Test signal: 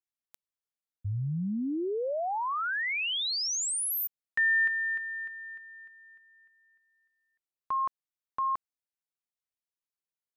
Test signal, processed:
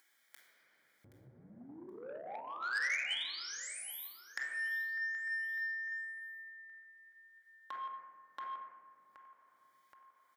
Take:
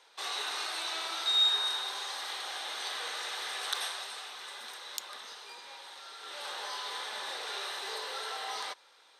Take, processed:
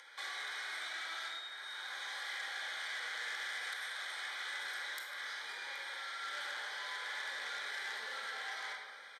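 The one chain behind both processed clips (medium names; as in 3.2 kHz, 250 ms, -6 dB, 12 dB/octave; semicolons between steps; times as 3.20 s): octave divider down 1 oct, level -5 dB; Butterworth band-stop 2.7 kHz, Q 3.6; compression 20:1, threshold -43 dBFS; high-pass 370 Hz 12 dB/octave; high-order bell 2.1 kHz +11.5 dB 1.3 oct; feedback delay 774 ms, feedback 38%, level -17 dB; simulated room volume 1200 m³, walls mixed, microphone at 2.3 m; upward compressor, threshold -51 dBFS; transformer saturation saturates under 3.3 kHz; trim -4 dB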